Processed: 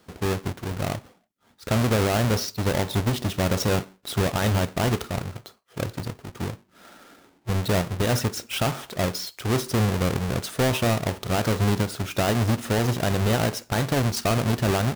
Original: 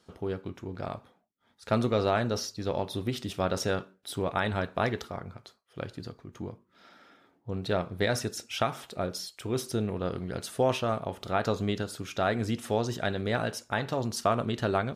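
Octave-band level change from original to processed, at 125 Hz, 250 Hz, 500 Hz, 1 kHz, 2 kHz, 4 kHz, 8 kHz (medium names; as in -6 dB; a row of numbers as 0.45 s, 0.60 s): +10.5 dB, +7.0 dB, +3.5 dB, +3.5 dB, +5.5 dB, +7.0 dB, +9.0 dB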